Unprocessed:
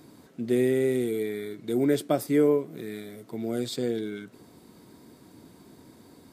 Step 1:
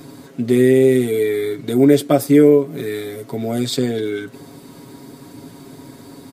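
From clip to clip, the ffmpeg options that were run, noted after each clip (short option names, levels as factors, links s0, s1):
-filter_complex "[0:a]asplit=2[s0][s1];[s1]acompressor=threshold=0.0251:ratio=6,volume=0.708[s2];[s0][s2]amix=inputs=2:normalize=0,aecho=1:1:7.3:0.73,volume=2.11"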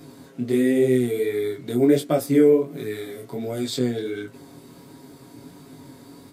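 -af "flanger=delay=19:depth=6:speed=1.4,volume=0.708"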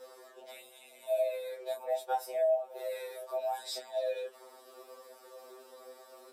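-af "acompressor=threshold=0.0501:ratio=4,afreqshift=200,afftfilt=real='re*2.45*eq(mod(b,6),0)':imag='im*2.45*eq(mod(b,6),0)':win_size=2048:overlap=0.75,volume=0.631"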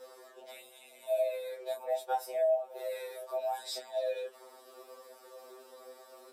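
-af anull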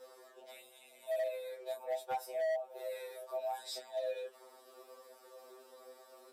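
-af "asoftclip=type=hard:threshold=0.0447,volume=0.631"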